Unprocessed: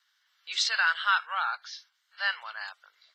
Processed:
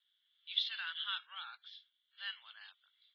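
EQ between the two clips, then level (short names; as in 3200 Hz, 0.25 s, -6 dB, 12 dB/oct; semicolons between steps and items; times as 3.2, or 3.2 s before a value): band-pass 3400 Hz, Q 13; air absorption 340 m; +11.0 dB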